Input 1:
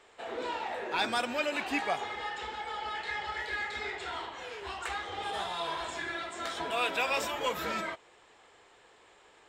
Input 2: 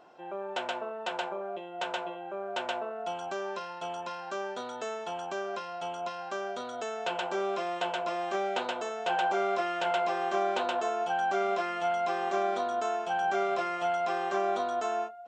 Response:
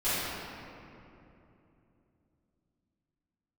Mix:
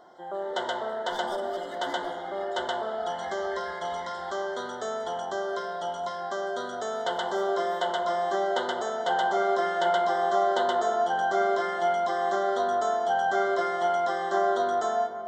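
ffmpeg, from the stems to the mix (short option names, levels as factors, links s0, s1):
-filter_complex "[0:a]volume=18.8,asoftclip=hard,volume=0.0531,adelay=150,volume=0.355,afade=t=out:st=4.66:d=0.2:silence=0.266073,asplit=2[s0][s1];[s1]volume=0.133[s2];[1:a]volume=1.33,asplit=2[s3][s4];[s4]volume=0.119[s5];[2:a]atrim=start_sample=2205[s6];[s2][s5]amix=inputs=2:normalize=0[s7];[s7][s6]afir=irnorm=-1:irlink=0[s8];[s0][s3][s8]amix=inputs=3:normalize=0,asuperstop=centerf=2500:order=12:qfactor=3,bandreject=f=50:t=h:w=6,bandreject=f=100:t=h:w=6,bandreject=f=150:t=h:w=6,bandreject=f=200:t=h:w=6,bandreject=f=250:t=h:w=6,bandreject=f=300:t=h:w=6,bandreject=f=350:t=h:w=6"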